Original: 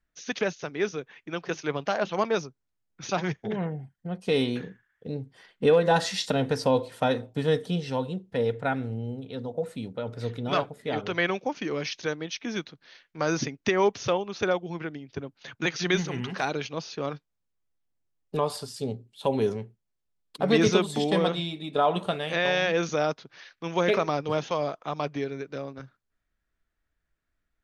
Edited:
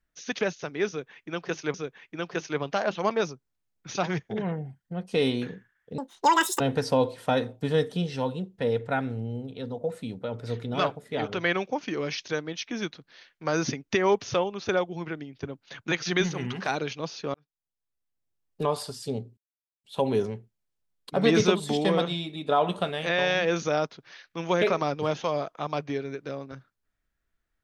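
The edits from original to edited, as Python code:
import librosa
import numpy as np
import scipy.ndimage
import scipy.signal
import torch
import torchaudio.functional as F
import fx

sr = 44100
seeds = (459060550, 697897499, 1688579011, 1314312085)

y = fx.edit(x, sr, fx.repeat(start_s=0.88, length_s=0.86, count=2),
    fx.speed_span(start_s=5.12, length_s=1.22, speed=1.96),
    fx.fade_in_span(start_s=17.08, length_s=1.29),
    fx.insert_silence(at_s=19.11, length_s=0.47), tone=tone)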